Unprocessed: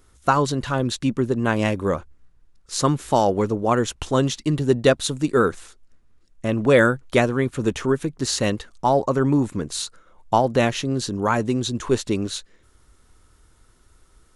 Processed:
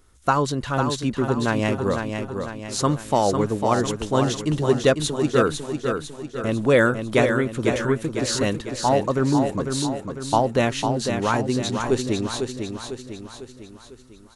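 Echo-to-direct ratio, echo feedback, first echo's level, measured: −5.0 dB, 50%, −6.0 dB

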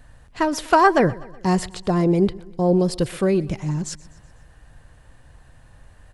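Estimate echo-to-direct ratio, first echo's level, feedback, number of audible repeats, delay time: −19.5 dB, −21.0 dB, 54%, 3, 124 ms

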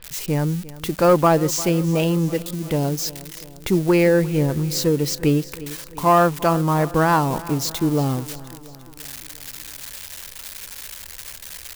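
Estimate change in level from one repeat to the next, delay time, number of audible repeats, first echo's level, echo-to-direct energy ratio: −4.5 dB, 349 ms, 4, −18.0 dB, −16.0 dB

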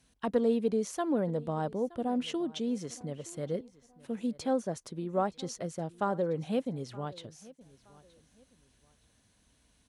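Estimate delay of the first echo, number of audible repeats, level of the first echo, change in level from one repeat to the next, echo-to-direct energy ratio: 921 ms, 2, −21.5 dB, −10.5 dB, −21.0 dB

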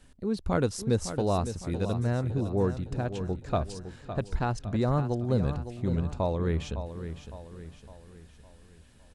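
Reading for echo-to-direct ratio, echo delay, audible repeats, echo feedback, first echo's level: −9.5 dB, 559 ms, 4, 46%, −10.5 dB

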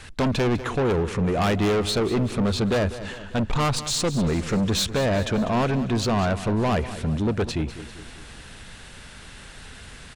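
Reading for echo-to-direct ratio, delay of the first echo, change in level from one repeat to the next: −12.5 dB, 197 ms, −5.5 dB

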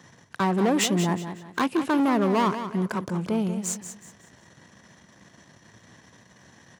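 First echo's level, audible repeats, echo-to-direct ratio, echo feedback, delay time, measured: −10.0 dB, 3, −9.5 dB, 32%, 184 ms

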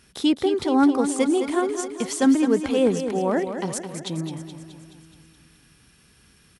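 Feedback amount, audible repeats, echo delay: 58%, 6, 212 ms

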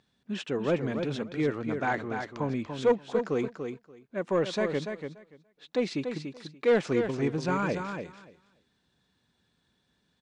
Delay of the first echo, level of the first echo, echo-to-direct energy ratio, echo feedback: 289 ms, −7.0 dB, −7.0 dB, 15%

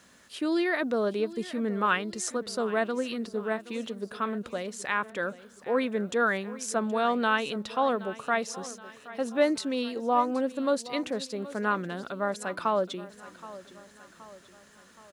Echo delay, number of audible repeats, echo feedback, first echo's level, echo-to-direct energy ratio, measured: 773 ms, 4, 51%, −17.0 dB, −15.5 dB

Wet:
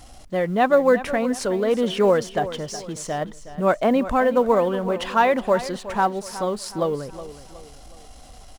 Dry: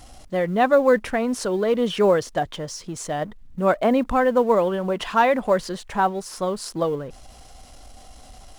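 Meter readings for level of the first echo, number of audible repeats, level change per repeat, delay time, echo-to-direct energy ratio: −14.0 dB, 3, −8.0 dB, 368 ms, −13.0 dB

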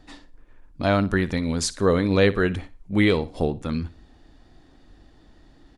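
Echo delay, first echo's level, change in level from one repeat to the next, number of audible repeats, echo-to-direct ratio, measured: 60 ms, −17.5 dB, −10.5 dB, 2, −17.0 dB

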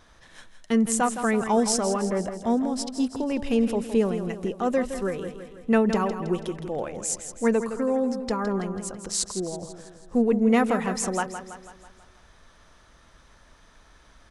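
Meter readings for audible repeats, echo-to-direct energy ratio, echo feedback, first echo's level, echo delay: 5, −8.5 dB, 54%, −10.0 dB, 164 ms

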